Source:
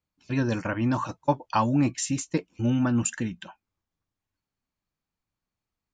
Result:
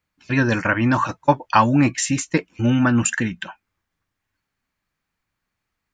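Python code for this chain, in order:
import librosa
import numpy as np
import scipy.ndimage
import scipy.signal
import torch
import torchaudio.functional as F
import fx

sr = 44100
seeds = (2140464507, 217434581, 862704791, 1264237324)

y = fx.peak_eq(x, sr, hz=1800.0, db=9.0, octaves=1.2)
y = y * 10.0 ** (6.0 / 20.0)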